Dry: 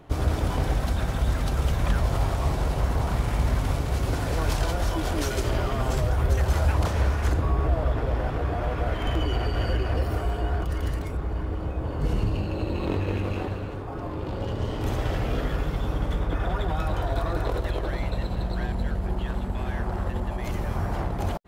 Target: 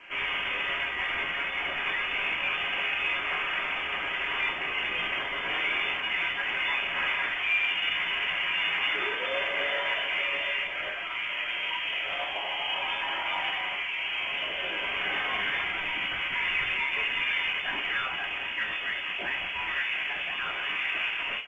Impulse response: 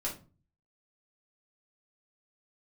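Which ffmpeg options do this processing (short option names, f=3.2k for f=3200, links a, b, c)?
-filter_complex "[0:a]highpass=1.2k,aemphasis=mode=production:type=50fm,areverse,acompressor=mode=upward:threshold=-37dB:ratio=2.5,areverse,alimiter=level_in=1dB:limit=-24dB:level=0:latency=1:release=79,volume=-1dB,acontrast=54,aresample=11025,asoftclip=type=tanh:threshold=-29.5dB,aresample=44100[a];[1:a]atrim=start_sample=2205,asetrate=43659,aresample=44100[b];[a][b]afir=irnorm=-1:irlink=0,lowpass=f=3k:t=q:w=0.5098,lowpass=f=3k:t=q:w=0.6013,lowpass=f=3k:t=q:w=0.9,lowpass=f=3k:t=q:w=2.563,afreqshift=-3500,volume=4dB" -ar 16000 -c:a pcm_mulaw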